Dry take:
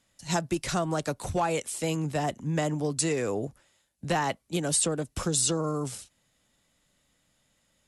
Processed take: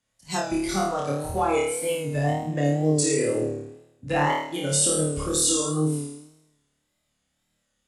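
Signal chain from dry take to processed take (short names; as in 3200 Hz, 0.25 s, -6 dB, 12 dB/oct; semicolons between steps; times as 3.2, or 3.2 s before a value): flutter echo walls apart 4.6 m, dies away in 1.1 s; wow and flutter 72 cents; spectral noise reduction 10 dB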